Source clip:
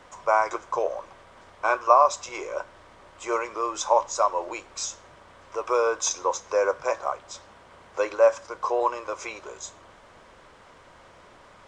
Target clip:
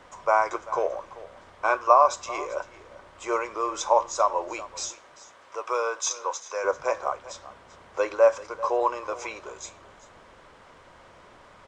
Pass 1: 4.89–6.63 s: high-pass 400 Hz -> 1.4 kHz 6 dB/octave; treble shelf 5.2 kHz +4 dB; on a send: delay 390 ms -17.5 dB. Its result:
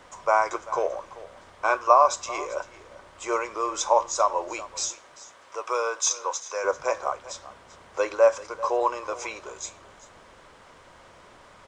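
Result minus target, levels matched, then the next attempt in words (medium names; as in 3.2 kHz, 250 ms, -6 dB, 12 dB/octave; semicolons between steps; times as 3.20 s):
8 kHz band +4.0 dB
4.89–6.63 s: high-pass 400 Hz -> 1.4 kHz 6 dB/octave; treble shelf 5.2 kHz -3 dB; on a send: delay 390 ms -17.5 dB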